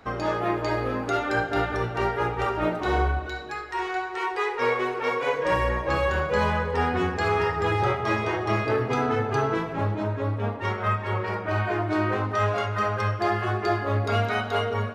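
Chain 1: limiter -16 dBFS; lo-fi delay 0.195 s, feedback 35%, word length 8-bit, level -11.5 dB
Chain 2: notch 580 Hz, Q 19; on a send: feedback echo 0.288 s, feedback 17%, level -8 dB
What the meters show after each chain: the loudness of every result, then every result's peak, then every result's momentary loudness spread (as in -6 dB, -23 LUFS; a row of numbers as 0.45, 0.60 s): -26.0, -25.0 LUFS; -14.0, -11.0 dBFS; 3, 4 LU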